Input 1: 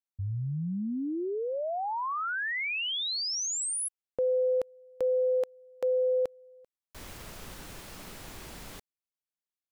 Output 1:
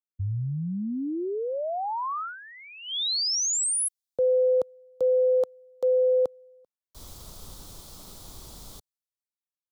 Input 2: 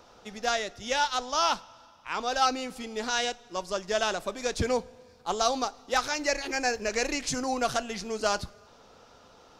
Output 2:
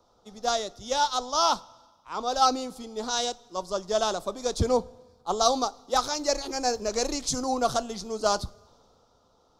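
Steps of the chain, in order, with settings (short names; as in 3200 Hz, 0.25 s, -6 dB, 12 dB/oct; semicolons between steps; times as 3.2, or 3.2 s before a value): band shelf 2100 Hz -12.5 dB 1.1 oct; three-band expander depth 40%; gain +2.5 dB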